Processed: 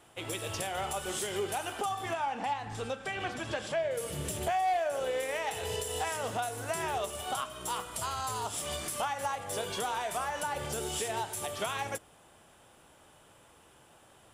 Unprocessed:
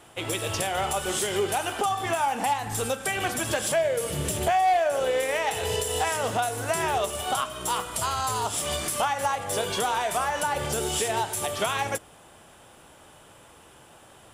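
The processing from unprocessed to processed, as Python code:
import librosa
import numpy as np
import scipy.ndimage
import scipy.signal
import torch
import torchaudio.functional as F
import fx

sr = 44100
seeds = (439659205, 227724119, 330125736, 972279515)

y = fx.lowpass(x, sr, hz=4600.0, slope=12, at=(2.13, 3.91))
y = y * librosa.db_to_amplitude(-7.5)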